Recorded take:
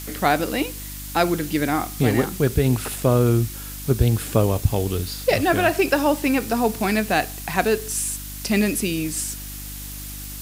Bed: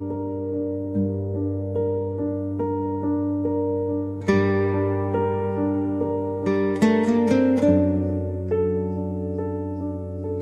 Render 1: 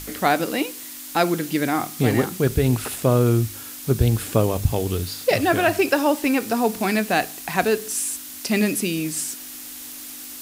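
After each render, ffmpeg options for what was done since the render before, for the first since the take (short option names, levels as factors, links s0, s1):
-af "bandreject=f=50:t=h:w=4,bandreject=f=100:t=h:w=4,bandreject=f=150:t=h:w=4,bandreject=f=200:t=h:w=4"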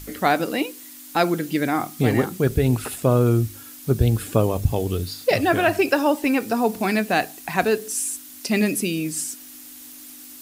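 -af "afftdn=nr=7:nf=-37"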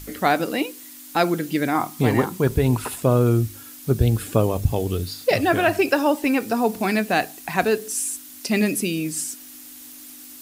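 -filter_complex "[0:a]asettb=1/sr,asplit=3[s0][s1][s2];[s0]atrim=end=1.754[s3];[s1]atrim=start=1.75:end=3.01,asetpts=PTS-STARTPTS,afade=t=in:d=0.004:c=qsin,afade=t=out:st=1.256:d=0.004:c=qsin,equalizer=f=980:t=o:w=0.3:g=11.5[s4];[s2]atrim=start=3.006[s5];[s3][s4]acrossfade=d=0.004:c1=hsin:c2=qsin[s6];[s6][s5]acrossfade=d=0.004:c1=qsin:c2=hsin"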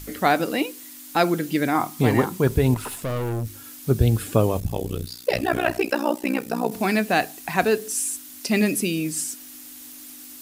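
-filter_complex "[0:a]asettb=1/sr,asplit=3[s0][s1][s2];[s0]atrim=end=2.744[s3];[s1]atrim=start=2.74:end=3.64,asetpts=PTS-STARTPTS,afade=t=in:d=0.004:c=qsin,afade=t=out:st=0.896:d=0.004:c=qsin,aeval=exprs='(tanh(15.8*val(0)+0.35)-tanh(0.35))/15.8':c=same[s4];[s2]atrim=start=3.636[s5];[s3][s4]acrossfade=d=0.004:c1=hsin:c2=qsin[s6];[s6][s5]acrossfade=d=0.004:c1=qsin:c2=hsin,asettb=1/sr,asplit=3[s7][s8][s9];[s7]atrim=end=4.604[s10];[s8]atrim=start=4.6:end=6.72,asetpts=PTS-STARTPTS,afade=t=in:d=0.004:c=qsin,afade=t=out:st=2.116:d=0.004:c=qsin,tremolo=f=61:d=0.947[s11];[s9]atrim=start=6.716[s12];[s10][s11]acrossfade=d=0.004:c1=hsin:c2=qsin[s13];[s13][s12]acrossfade=d=0.004:c1=qsin:c2=hsin"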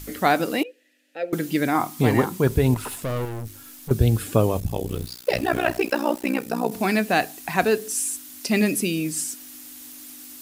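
-filter_complex "[0:a]asettb=1/sr,asplit=3[s0][s1][s2];[s0]atrim=end=0.634[s3];[s1]atrim=start=0.63:end=1.33,asetpts=PTS-STARTPTS,afade=t=in:d=0.004:c=qsin,afade=t=out:st=0.696:d=0.004:c=qsin,asplit=3[s4][s5][s6];[s4]bandpass=f=530:t=q:w=8,volume=1[s7];[s5]bandpass=f=1840:t=q:w=8,volume=0.501[s8];[s6]bandpass=f=2480:t=q:w=8,volume=0.355[s9];[s7][s8][s9]amix=inputs=3:normalize=0[s10];[s2]atrim=start=1.326[s11];[s3][s10]acrossfade=d=0.004:c1=hsin:c2=qsin[s12];[s12][s11]acrossfade=d=0.004:c1=qsin:c2=hsin,asettb=1/sr,asplit=3[s13][s14][s15];[s13]atrim=end=3.254[s16];[s14]atrim=start=3.25:end=3.91,asetpts=PTS-STARTPTS,afade=t=in:d=0.004:c=qsin,afade=t=out:st=0.656:d=0.004:c=qsin,aeval=exprs='(tanh(31.6*val(0)+0.55)-tanh(0.55))/31.6':c=same[s17];[s15]atrim=start=3.906[s18];[s16][s17]acrossfade=d=0.004:c1=hsin:c2=qsin[s19];[s19][s18]acrossfade=d=0.004:c1=qsin:c2=hsin,asettb=1/sr,asplit=3[s20][s21][s22];[s20]atrim=end=4.884[s23];[s21]atrim=start=4.88:end=6.31,asetpts=PTS-STARTPTS,afade=t=in:d=0.004:c=qsin,afade=t=out:st=1.426:d=0.004:c=qsin,aeval=exprs='val(0)*gte(abs(val(0)),0.01)':c=same[s24];[s22]atrim=start=6.306[s25];[s23][s24]acrossfade=d=0.004:c1=hsin:c2=qsin[s26];[s26][s25]acrossfade=d=0.004:c1=qsin:c2=hsin"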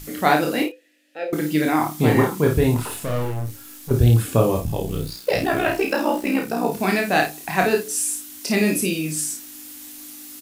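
-filter_complex "[0:a]asplit=2[s0][s1];[s1]adelay=33,volume=0.355[s2];[s0][s2]amix=inputs=2:normalize=0,aecho=1:1:26|53:0.562|0.447"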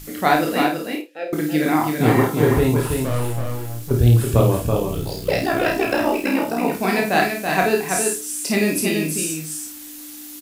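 -filter_complex "[0:a]asplit=2[s0][s1];[s1]adelay=50,volume=0.282[s2];[s0][s2]amix=inputs=2:normalize=0,aecho=1:1:330:0.562"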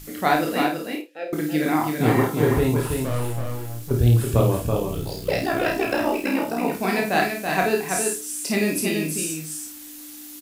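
-af "volume=0.708"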